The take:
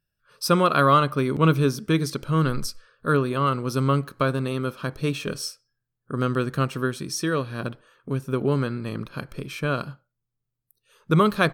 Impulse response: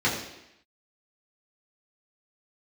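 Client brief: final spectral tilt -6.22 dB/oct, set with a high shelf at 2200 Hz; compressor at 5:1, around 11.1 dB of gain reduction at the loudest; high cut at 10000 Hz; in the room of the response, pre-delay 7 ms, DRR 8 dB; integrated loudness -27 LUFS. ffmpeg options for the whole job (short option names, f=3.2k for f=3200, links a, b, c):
-filter_complex "[0:a]lowpass=10k,highshelf=f=2.2k:g=-7,acompressor=threshold=-27dB:ratio=5,asplit=2[a][b];[1:a]atrim=start_sample=2205,adelay=7[c];[b][c]afir=irnorm=-1:irlink=0,volume=-22dB[d];[a][d]amix=inputs=2:normalize=0,volume=5dB"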